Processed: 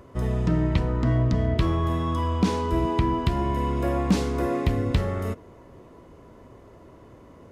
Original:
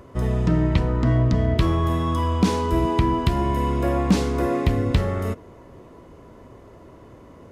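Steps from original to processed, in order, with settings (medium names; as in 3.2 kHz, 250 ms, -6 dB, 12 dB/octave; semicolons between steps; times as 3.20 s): 1.48–3.77 s: treble shelf 8.5 kHz -6.5 dB; trim -3 dB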